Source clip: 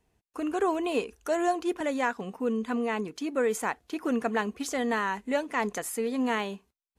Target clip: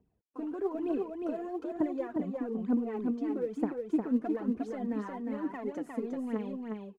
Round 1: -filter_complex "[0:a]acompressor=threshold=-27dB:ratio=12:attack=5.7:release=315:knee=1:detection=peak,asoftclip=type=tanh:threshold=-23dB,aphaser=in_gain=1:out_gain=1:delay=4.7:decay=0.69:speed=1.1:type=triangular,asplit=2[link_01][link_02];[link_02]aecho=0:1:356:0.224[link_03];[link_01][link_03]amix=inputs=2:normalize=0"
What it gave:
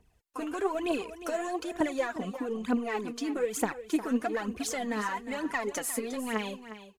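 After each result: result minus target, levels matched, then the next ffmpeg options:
echo-to-direct −9.5 dB; 250 Hz band −3.0 dB
-filter_complex "[0:a]acompressor=threshold=-27dB:ratio=12:attack=5.7:release=315:knee=1:detection=peak,asoftclip=type=tanh:threshold=-23dB,aphaser=in_gain=1:out_gain=1:delay=4.7:decay=0.69:speed=1.1:type=triangular,asplit=2[link_01][link_02];[link_02]aecho=0:1:356:0.668[link_03];[link_01][link_03]amix=inputs=2:normalize=0"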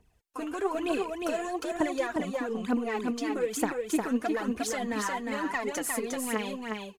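250 Hz band −3.0 dB
-filter_complex "[0:a]acompressor=threshold=-27dB:ratio=12:attack=5.7:release=315:knee=1:detection=peak,bandpass=frequency=240:width_type=q:width=0.94:csg=0,asoftclip=type=tanh:threshold=-23dB,aphaser=in_gain=1:out_gain=1:delay=4.7:decay=0.69:speed=1.1:type=triangular,asplit=2[link_01][link_02];[link_02]aecho=0:1:356:0.668[link_03];[link_01][link_03]amix=inputs=2:normalize=0"

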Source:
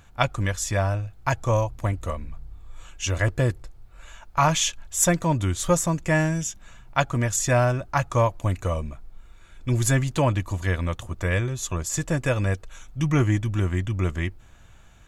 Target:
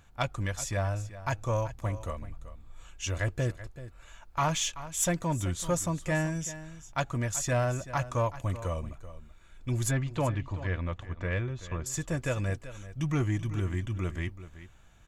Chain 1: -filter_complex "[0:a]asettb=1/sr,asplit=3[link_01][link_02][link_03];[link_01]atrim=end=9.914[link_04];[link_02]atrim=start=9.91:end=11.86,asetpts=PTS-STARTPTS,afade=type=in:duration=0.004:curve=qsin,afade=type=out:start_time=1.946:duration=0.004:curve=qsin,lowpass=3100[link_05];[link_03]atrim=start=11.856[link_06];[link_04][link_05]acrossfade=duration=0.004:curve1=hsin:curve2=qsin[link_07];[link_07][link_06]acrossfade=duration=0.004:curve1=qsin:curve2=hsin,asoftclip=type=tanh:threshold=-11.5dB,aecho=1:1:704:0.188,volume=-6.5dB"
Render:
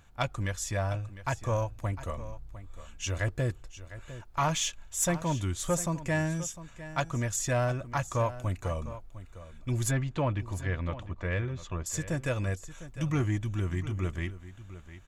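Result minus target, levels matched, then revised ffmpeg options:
echo 322 ms late
-filter_complex "[0:a]asettb=1/sr,asplit=3[link_01][link_02][link_03];[link_01]atrim=end=9.914[link_04];[link_02]atrim=start=9.91:end=11.86,asetpts=PTS-STARTPTS,afade=type=in:duration=0.004:curve=qsin,afade=type=out:start_time=1.946:duration=0.004:curve=qsin,lowpass=3100[link_05];[link_03]atrim=start=11.856[link_06];[link_04][link_05]acrossfade=duration=0.004:curve1=hsin:curve2=qsin[link_07];[link_07][link_06]acrossfade=duration=0.004:curve1=qsin:curve2=hsin,asoftclip=type=tanh:threshold=-11.5dB,aecho=1:1:382:0.188,volume=-6.5dB"

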